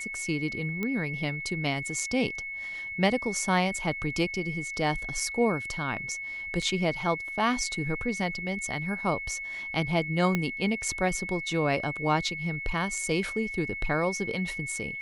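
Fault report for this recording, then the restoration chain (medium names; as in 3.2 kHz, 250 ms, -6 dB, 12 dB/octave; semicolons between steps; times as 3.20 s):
whine 2.2 kHz -34 dBFS
0.83 s: pop -18 dBFS
6.62 s: dropout 4.4 ms
10.35 s: pop -13 dBFS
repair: de-click; band-stop 2.2 kHz, Q 30; interpolate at 6.62 s, 4.4 ms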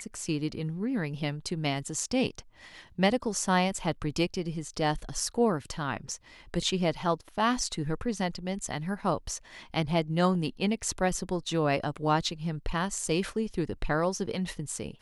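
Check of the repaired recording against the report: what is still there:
10.35 s: pop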